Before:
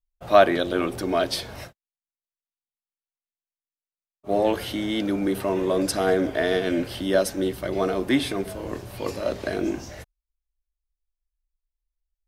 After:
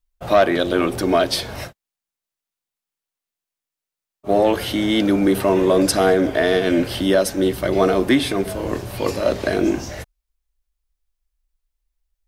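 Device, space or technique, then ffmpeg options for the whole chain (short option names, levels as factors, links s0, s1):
soft clipper into limiter: -af "asoftclip=type=tanh:threshold=0.376,alimiter=limit=0.188:level=0:latency=1:release=449,volume=2.51"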